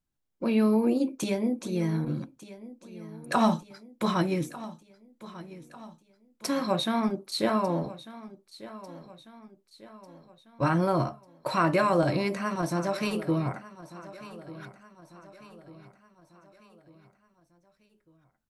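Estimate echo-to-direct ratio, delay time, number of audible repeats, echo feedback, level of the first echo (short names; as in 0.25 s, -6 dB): -16.0 dB, 1.196 s, 3, 48%, -17.0 dB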